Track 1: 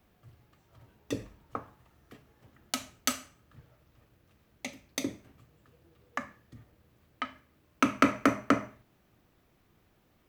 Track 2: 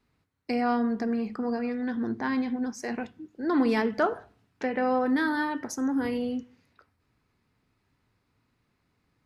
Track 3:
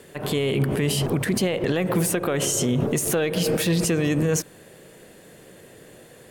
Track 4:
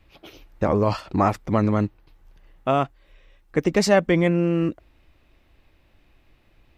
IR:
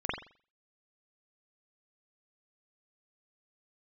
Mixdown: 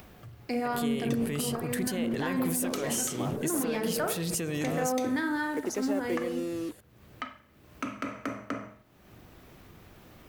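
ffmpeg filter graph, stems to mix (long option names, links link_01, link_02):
-filter_complex "[0:a]alimiter=limit=-12.5dB:level=0:latency=1:release=361,volume=0dB,asplit=2[link_01][link_02];[link_02]volume=-17.5dB[link_03];[1:a]acrossover=split=480[link_04][link_05];[link_04]aeval=exprs='val(0)*(1-0.5/2+0.5/2*cos(2*PI*3.4*n/s))':channel_layout=same[link_06];[link_05]aeval=exprs='val(0)*(1-0.5/2-0.5/2*cos(2*PI*3.4*n/s))':channel_layout=same[link_07];[link_06][link_07]amix=inputs=2:normalize=0,aeval=exprs='sgn(val(0))*max(abs(val(0))-0.00141,0)':channel_layout=same,volume=-2dB,asplit=2[link_08][link_09];[link_09]volume=-12dB[link_10];[2:a]crystalizer=i=1.5:c=0,adelay=500,volume=-10dB[link_11];[3:a]highpass=frequency=260:width=0.5412,highpass=frequency=260:width=1.3066,acrossover=split=490[link_12][link_13];[link_13]acompressor=threshold=-37dB:ratio=2[link_14];[link_12][link_14]amix=inputs=2:normalize=0,acrusher=bits=5:mix=0:aa=0.5,adelay=2000,volume=-9.5dB[link_15];[4:a]atrim=start_sample=2205[link_16];[link_03][link_10]amix=inputs=2:normalize=0[link_17];[link_17][link_16]afir=irnorm=-1:irlink=0[link_18];[link_01][link_08][link_11][link_15][link_18]amix=inputs=5:normalize=0,acompressor=mode=upward:threshold=-39dB:ratio=2.5,alimiter=limit=-19.5dB:level=0:latency=1:release=196"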